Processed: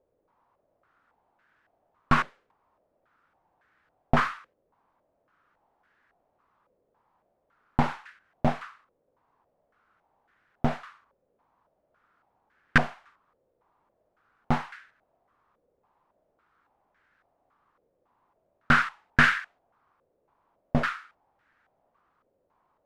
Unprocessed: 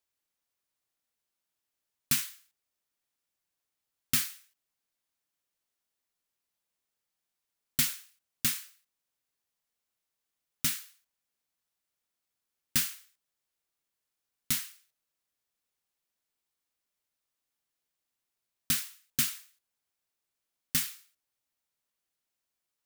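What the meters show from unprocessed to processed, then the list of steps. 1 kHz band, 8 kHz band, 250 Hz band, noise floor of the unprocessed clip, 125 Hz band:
+23.5 dB, -19.0 dB, +14.0 dB, under -85 dBFS, +13.5 dB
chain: tracing distortion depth 0.028 ms; maximiser +22.5 dB; stepped low-pass 3.6 Hz 520–1600 Hz; gain -2 dB

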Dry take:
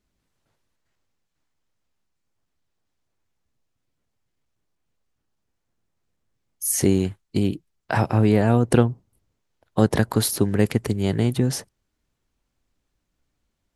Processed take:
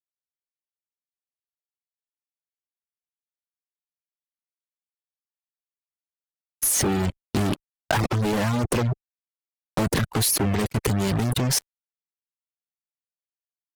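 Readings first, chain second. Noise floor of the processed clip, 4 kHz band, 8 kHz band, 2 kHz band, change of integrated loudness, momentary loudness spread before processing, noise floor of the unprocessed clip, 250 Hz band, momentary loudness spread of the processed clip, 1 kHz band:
under -85 dBFS, +4.0 dB, +3.0 dB, +1.0 dB, -2.0 dB, 9 LU, -77 dBFS, -4.5 dB, 7 LU, 0.0 dB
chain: fuzz box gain 35 dB, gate -34 dBFS; level quantiser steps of 21 dB; reverb removal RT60 0.6 s

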